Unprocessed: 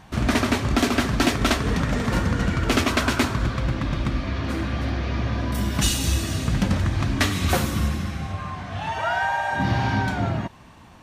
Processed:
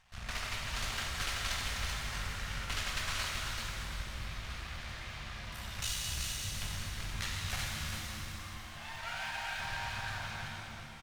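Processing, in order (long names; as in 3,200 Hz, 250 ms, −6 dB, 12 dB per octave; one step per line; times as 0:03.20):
high-shelf EQ 6,800 Hz −9 dB
half-wave rectification
guitar amp tone stack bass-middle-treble 10-0-10
on a send: single-tap delay 384 ms −4.5 dB
on the sum: regular buffer underruns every 0.35 s, samples 512, zero, from 0:00.56
reverb with rising layers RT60 2.3 s, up +7 semitones, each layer −8 dB, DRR −1 dB
level −6.5 dB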